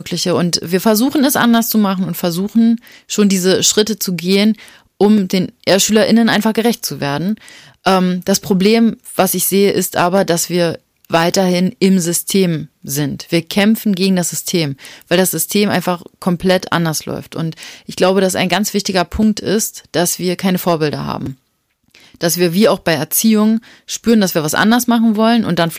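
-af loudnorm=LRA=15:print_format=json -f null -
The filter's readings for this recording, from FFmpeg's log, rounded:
"input_i" : "-14.3",
"input_tp" : "-0.9",
"input_lra" : "3.0",
"input_thresh" : "-24.6",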